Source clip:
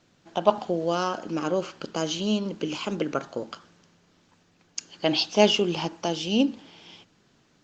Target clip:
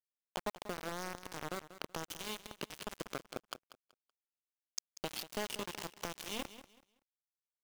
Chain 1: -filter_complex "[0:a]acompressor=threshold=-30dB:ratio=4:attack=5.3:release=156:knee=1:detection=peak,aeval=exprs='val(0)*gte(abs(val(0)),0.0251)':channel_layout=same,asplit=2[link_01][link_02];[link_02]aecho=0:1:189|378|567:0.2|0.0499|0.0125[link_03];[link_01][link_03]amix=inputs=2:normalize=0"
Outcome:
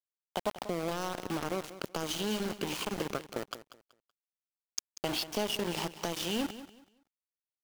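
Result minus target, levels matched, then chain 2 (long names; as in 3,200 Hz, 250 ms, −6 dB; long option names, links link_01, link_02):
downward compressor: peak gain reduction −5 dB
-filter_complex "[0:a]acompressor=threshold=-37dB:ratio=4:attack=5.3:release=156:knee=1:detection=peak,aeval=exprs='val(0)*gte(abs(val(0)),0.0251)':channel_layout=same,asplit=2[link_01][link_02];[link_02]aecho=0:1:189|378|567:0.2|0.0499|0.0125[link_03];[link_01][link_03]amix=inputs=2:normalize=0"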